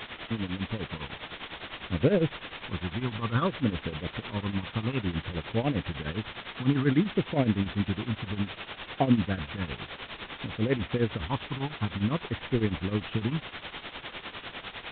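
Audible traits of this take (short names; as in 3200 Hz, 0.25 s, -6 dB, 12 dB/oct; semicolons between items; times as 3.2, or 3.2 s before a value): phasing stages 8, 0.58 Hz, lowest notch 520–1100 Hz; a quantiser's noise floor 6-bit, dither triangular; tremolo triangle 9.9 Hz, depth 85%; µ-law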